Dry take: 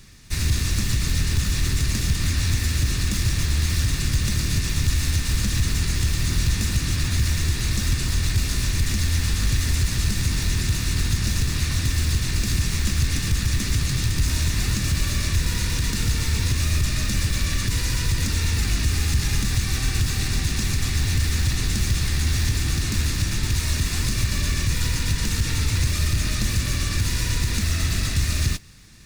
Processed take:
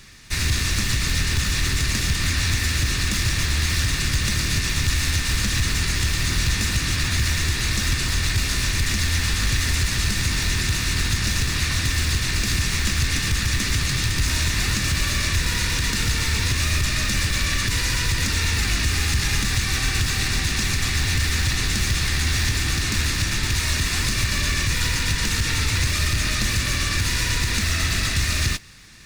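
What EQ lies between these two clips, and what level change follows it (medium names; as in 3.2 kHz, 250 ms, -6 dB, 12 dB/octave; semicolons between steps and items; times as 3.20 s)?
FFT filter 160 Hz 0 dB, 1.9 kHz +9 dB, 14 kHz +2 dB; -1.5 dB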